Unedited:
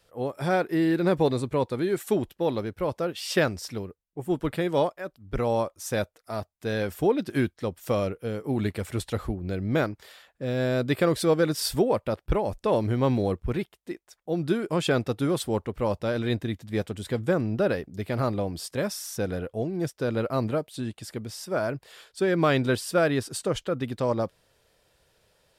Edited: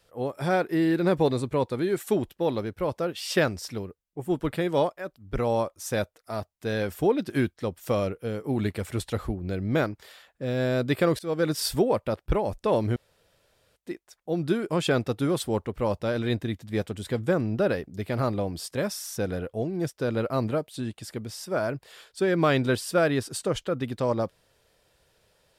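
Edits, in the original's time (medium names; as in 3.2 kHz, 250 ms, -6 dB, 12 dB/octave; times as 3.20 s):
11.19–11.49 s: fade in, from -21.5 dB
12.96–13.76 s: room tone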